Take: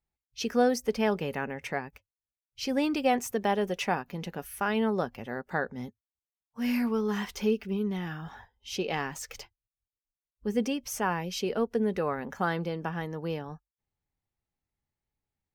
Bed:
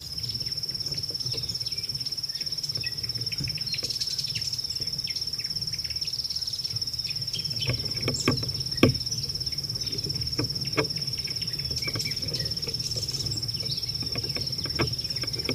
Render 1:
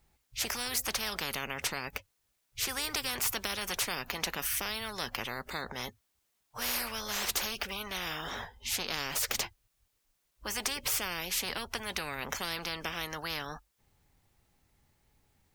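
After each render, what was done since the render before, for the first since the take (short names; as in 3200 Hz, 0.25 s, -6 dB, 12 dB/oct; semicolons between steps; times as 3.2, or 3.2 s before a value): spectral compressor 10:1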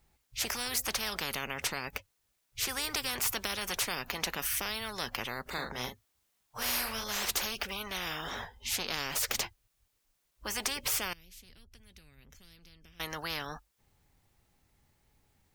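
5.42–7.04 doubler 40 ms -5.5 dB; 11.13–13 passive tone stack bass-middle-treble 10-0-1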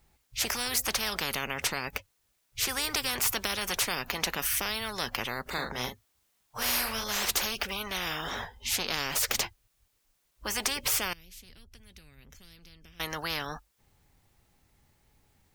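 gain +3.5 dB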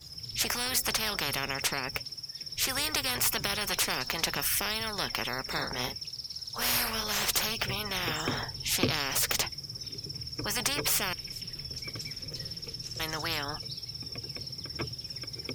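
add bed -9.5 dB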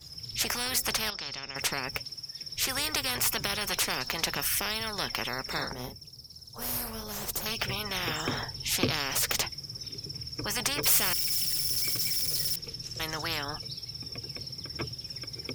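1.1–1.56 ladder low-pass 6000 Hz, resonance 55%; 5.73–7.46 bell 2600 Hz -14 dB 2.8 oct; 10.83–12.56 switching spikes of -23 dBFS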